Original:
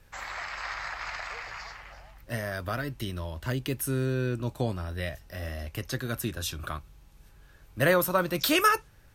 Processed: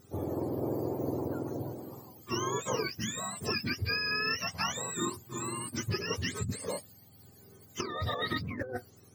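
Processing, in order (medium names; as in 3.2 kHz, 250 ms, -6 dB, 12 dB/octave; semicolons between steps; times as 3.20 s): spectrum inverted on a logarithmic axis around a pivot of 810 Hz; dynamic bell 160 Hz, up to -7 dB, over -46 dBFS, Q 2.3; compressor with a negative ratio -32 dBFS, ratio -1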